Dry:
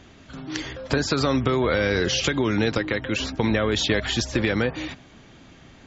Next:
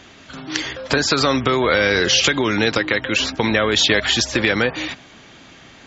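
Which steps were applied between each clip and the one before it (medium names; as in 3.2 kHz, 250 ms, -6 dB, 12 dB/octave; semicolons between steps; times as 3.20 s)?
low-pass 4 kHz 6 dB/octave; tilt EQ +2.5 dB/octave; trim +7 dB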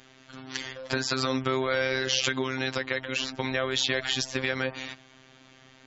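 robot voice 131 Hz; trim -8.5 dB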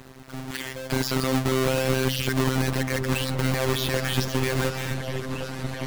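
square wave that keeps the level; peak limiter -15.5 dBFS, peak gain reduction 8.5 dB; delay with an opening low-pass 733 ms, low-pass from 200 Hz, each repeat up 2 oct, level -3 dB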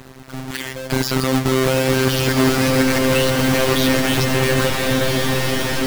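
swelling reverb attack 1540 ms, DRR -0.5 dB; trim +5.5 dB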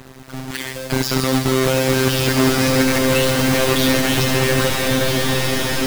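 feedback echo behind a high-pass 68 ms, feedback 76%, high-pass 3.6 kHz, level -5 dB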